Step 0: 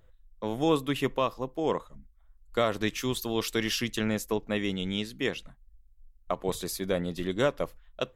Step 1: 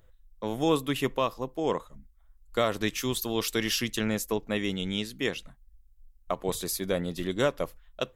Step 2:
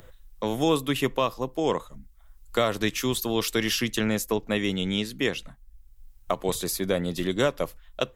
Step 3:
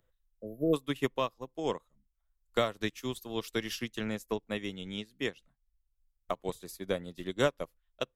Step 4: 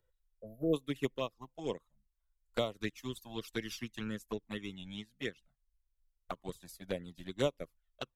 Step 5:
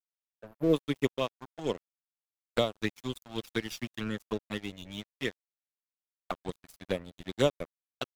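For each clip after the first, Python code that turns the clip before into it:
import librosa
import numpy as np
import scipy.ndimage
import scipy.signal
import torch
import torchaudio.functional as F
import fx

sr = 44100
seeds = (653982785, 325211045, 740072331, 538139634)

y1 = fx.high_shelf(x, sr, hz=6100.0, db=6.0)
y2 = fx.band_squash(y1, sr, depth_pct=40)
y2 = F.gain(torch.from_numpy(y2), 3.0).numpy()
y3 = fx.spec_repair(y2, sr, seeds[0], start_s=0.33, length_s=0.38, low_hz=680.0, high_hz=11000.0, source='before')
y3 = fx.upward_expand(y3, sr, threshold_db=-35.0, expansion=2.5)
y3 = F.gain(torch.from_numpy(y3), -2.5).numpy()
y4 = fx.env_flanger(y3, sr, rest_ms=2.1, full_db=-25.5)
y4 = F.gain(torch.from_numpy(y4), -2.5).numpy()
y5 = np.sign(y4) * np.maximum(np.abs(y4) - 10.0 ** (-49.5 / 20.0), 0.0)
y5 = F.gain(torch.from_numpy(y5), 6.5).numpy()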